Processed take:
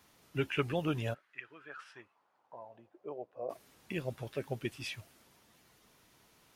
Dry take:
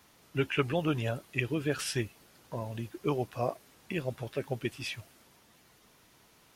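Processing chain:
0:01.13–0:03.49: resonant band-pass 1,800 Hz → 480 Hz, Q 3.2
level −3.5 dB

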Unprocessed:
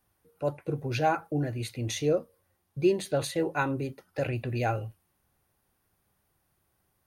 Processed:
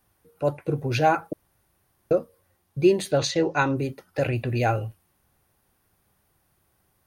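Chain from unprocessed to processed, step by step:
0:01.33–0:02.11: fill with room tone
0:03.18–0:03.76: high shelf with overshoot 8,000 Hz −13 dB, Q 3
level +5.5 dB

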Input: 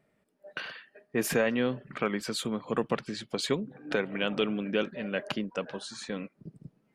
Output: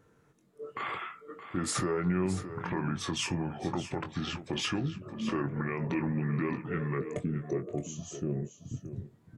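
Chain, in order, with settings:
gain on a spectral selection 0:05.17–0:06.61, 970–7,700 Hz −20 dB
dynamic equaliser 4,700 Hz, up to −5 dB, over −47 dBFS, Q 1.1
in parallel at +3 dB: downward compressor, threshold −38 dBFS, peak gain reduction 15.5 dB
on the sum: wrong playback speed 45 rpm record played at 33 rpm
brickwall limiter −21.5 dBFS, peak gain reduction 10.5 dB
double-tracking delay 22 ms −8.5 dB
single-tap delay 620 ms −12 dB
level −1 dB

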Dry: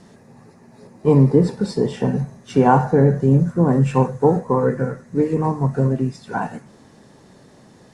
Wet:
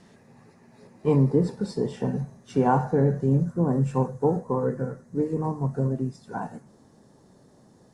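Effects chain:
parametric band 2,500 Hz +4.5 dB 1.4 octaves, from 0:01.16 −3.5 dB, from 0:03.45 −10 dB
level −7 dB

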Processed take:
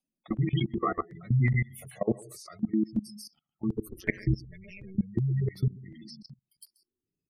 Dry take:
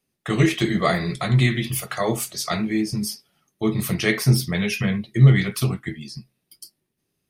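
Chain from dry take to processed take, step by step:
single-tap delay 134 ms −6 dB
0:03.85–0:04.98: amplitude modulation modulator 190 Hz, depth 100%
gate on every frequency bin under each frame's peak −15 dB strong
output level in coarse steps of 22 dB
step-sequenced phaser 2.7 Hz 430–4,700 Hz

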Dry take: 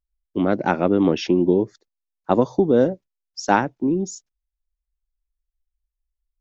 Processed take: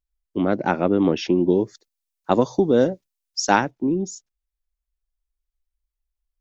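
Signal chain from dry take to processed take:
0:01.50–0:03.71: high-shelf EQ 2,800 Hz +10.5 dB
level −1 dB

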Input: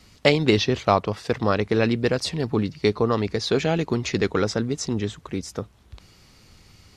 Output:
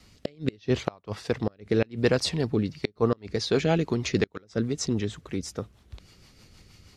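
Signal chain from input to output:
gate with flip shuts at −9 dBFS, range −32 dB
rotating-speaker cabinet horn 0.8 Hz, later 6.3 Hz, at 0:02.36

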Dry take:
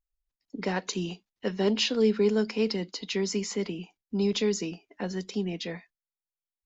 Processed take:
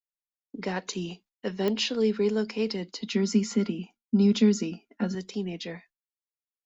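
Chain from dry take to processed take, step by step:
downward expander −50 dBFS
0:03.03–0:05.15: hollow resonant body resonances 230/1,400 Hz, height 17 dB, ringing for 95 ms
digital clicks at 0:01.68, −15 dBFS
level −1.5 dB

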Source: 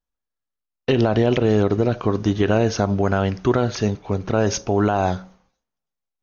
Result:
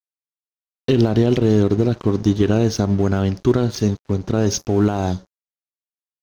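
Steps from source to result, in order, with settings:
flat-topped bell 1,200 Hz −8.5 dB 2.8 octaves, from 0:05.12 −16 dB
dead-zone distortion −40 dBFS
level +4 dB

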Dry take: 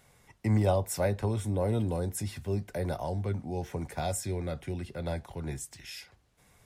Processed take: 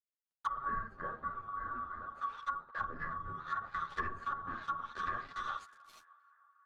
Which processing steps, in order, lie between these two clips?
neighbouring bands swapped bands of 1,000 Hz
high-shelf EQ 9,400 Hz −10.5 dB
rectangular room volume 3,000 cubic metres, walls furnished, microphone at 2.4 metres
dead-zone distortion −40.5 dBFS
feedback echo with a band-pass in the loop 310 ms, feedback 72%, band-pass 1,200 Hz, level −22 dB
multi-voice chorus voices 4, 1.2 Hz, delay 10 ms, depth 3 ms
treble cut that deepens with the level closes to 600 Hz, closed at −29.5 dBFS
0:02.78–0:05.56: bass and treble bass +9 dB, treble +2 dB
one half of a high-frequency compander decoder only
level +1 dB

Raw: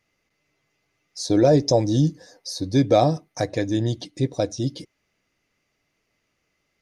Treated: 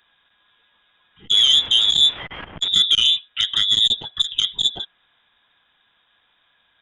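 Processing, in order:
0:01.34–0:02.68: spike at every zero crossing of −18 dBFS
in parallel at +2.5 dB: downward compressor, threshold −26 dBFS, peak gain reduction 13.5 dB
on the sum: brickwall limiter −9.5 dBFS, peak gain reduction 6 dB
voice inversion scrambler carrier 3,700 Hz
saturating transformer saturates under 1,800 Hz
level +3.5 dB

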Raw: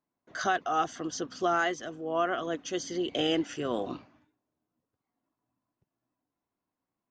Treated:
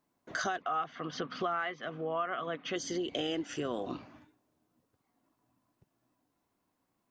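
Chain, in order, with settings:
0:00.62–0:02.76: loudspeaker in its box 150–3,900 Hz, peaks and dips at 150 Hz +6 dB, 330 Hz −7 dB, 1,200 Hz +7 dB, 2,200 Hz +8 dB
downward compressor 4 to 1, threshold −42 dBFS, peak gain reduction 19 dB
level +8 dB

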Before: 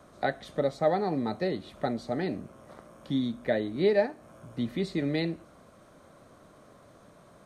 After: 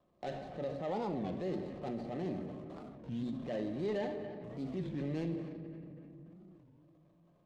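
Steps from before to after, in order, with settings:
running median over 25 samples
noise gate with hold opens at −43 dBFS
notch filter 1,400 Hz, Q 6.8
in parallel at −1 dB: brickwall limiter −24.5 dBFS, peak gain reduction 10 dB
on the sum: low-pass filter 6,500 Hz 12 dB per octave
on a send: feedback echo with a band-pass in the loop 275 ms, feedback 48%, band-pass 1,400 Hz, level −18 dB
on the sum: rectangular room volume 3,400 cubic metres, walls mixed, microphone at 0.89 metres
downward compressor 1.5 to 1, threshold −50 dBFS, peak gain reduction 12 dB
transient designer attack −6 dB, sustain +5 dB
wow of a warped record 33 1/3 rpm, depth 250 cents
level −2 dB

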